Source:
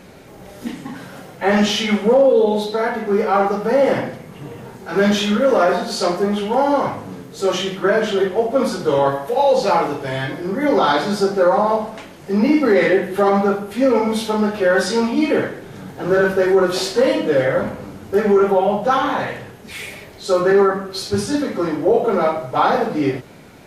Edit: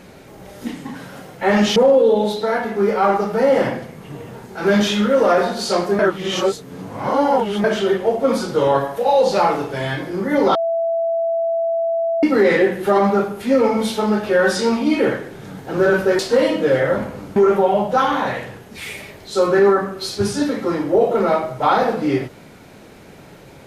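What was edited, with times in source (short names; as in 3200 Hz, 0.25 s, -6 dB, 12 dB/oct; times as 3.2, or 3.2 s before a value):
1.76–2.07 cut
6.3–7.95 reverse
10.86–12.54 bleep 665 Hz -16.5 dBFS
16.5–16.84 cut
18.01–18.29 cut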